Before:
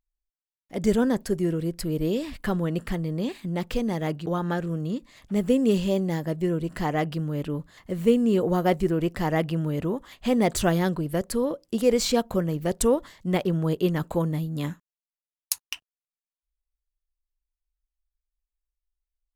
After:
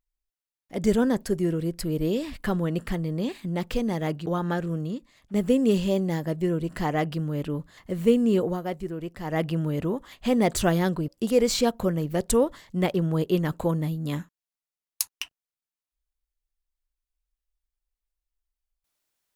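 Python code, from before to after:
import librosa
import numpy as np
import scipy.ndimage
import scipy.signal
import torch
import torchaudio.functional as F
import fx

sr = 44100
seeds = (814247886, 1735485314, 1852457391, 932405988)

y = fx.edit(x, sr, fx.fade_out_to(start_s=4.8, length_s=0.54, curve='qua', floor_db=-9.0),
    fx.fade_down_up(start_s=8.39, length_s=1.05, db=-9.0, fade_s=0.21),
    fx.cut(start_s=11.08, length_s=0.51), tone=tone)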